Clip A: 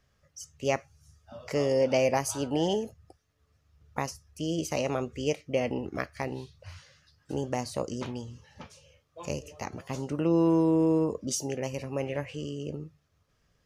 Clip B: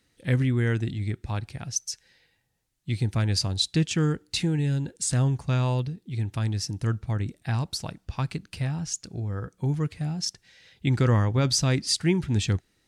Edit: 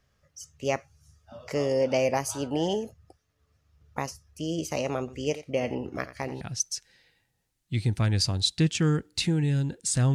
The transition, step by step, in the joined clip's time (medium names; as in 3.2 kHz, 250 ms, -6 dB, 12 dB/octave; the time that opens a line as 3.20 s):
clip A
4.99–6.41 s: delay 87 ms -14.5 dB
6.41 s: go over to clip B from 1.57 s